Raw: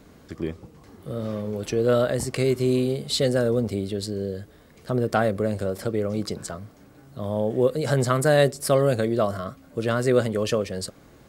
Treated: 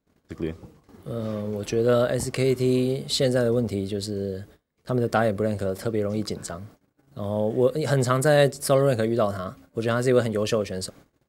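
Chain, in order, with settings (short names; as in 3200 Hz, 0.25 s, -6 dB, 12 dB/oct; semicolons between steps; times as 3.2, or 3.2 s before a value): gate -47 dBFS, range -28 dB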